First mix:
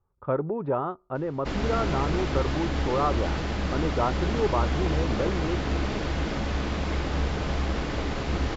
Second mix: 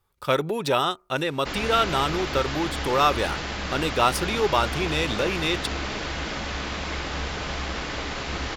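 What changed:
speech: remove transistor ladder low-pass 1,600 Hz, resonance 25%
master: add tilt shelving filter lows −6 dB, about 760 Hz

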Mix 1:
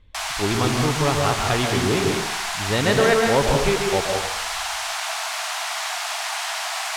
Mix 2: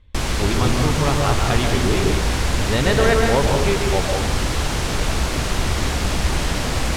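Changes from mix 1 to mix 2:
background: remove linear-phase brick-wall high-pass 620 Hz
master: add parametric band 64 Hz +7 dB 0.85 octaves

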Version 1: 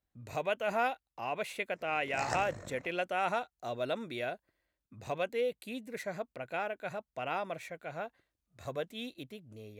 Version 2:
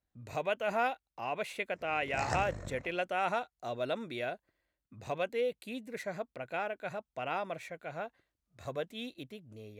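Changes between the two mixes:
background: remove high-pass filter 220 Hz 6 dB per octave
master: add high-shelf EQ 10,000 Hz −5 dB

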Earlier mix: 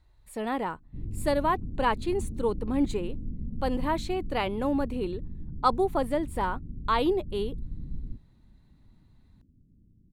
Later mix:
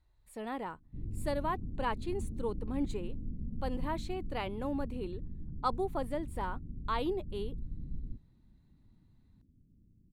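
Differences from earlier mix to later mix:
speech −8.5 dB
background −4.0 dB

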